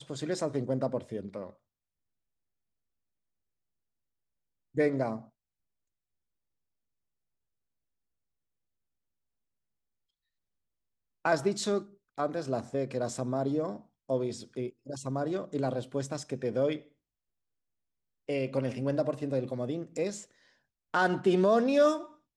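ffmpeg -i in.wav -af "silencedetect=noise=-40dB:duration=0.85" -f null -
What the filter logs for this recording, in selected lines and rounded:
silence_start: 1.50
silence_end: 4.76 | silence_duration: 3.26
silence_start: 5.21
silence_end: 11.25 | silence_duration: 6.04
silence_start: 16.79
silence_end: 18.29 | silence_duration: 1.50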